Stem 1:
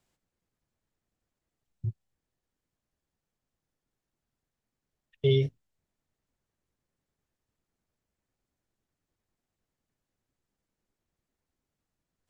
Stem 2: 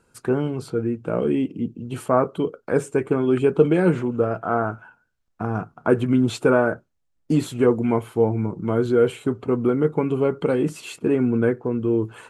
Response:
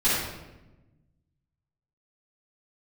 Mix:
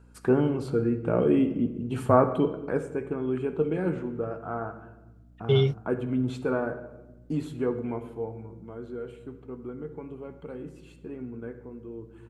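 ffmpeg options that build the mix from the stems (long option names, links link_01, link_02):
-filter_complex "[0:a]adelay=250,volume=2dB[link_01];[1:a]highshelf=frequency=3600:gain=-7.5,volume=-1.5dB,afade=type=out:start_time=2.54:duration=0.28:silence=0.334965,afade=type=out:start_time=7.72:duration=0.8:silence=0.375837,asplit=2[link_02][link_03];[link_03]volume=-23dB[link_04];[2:a]atrim=start_sample=2205[link_05];[link_04][link_05]afir=irnorm=-1:irlink=0[link_06];[link_01][link_02][link_06]amix=inputs=3:normalize=0,aeval=exprs='val(0)+0.00224*(sin(2*PI*60*n/s)+sin(2*PI*2*60*n/s)/2+sin(2*PI*3*60*n/s)/3+sin(2*PI*4*60*n/s)/4+sin(2*PI*5*60*n/s)/5)':channel_layout=same"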